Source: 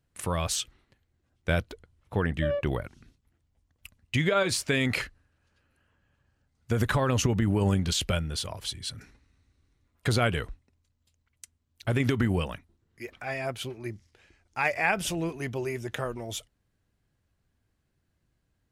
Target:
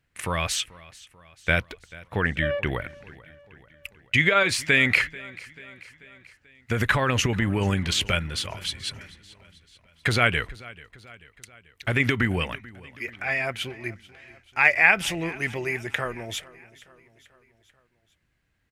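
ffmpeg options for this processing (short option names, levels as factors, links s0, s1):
-af "equalizer=f=2100:w=1.1:g=12,aecho=1:1:438|876|1314|1752:0.0891|0.0499|0.0279|0.0157"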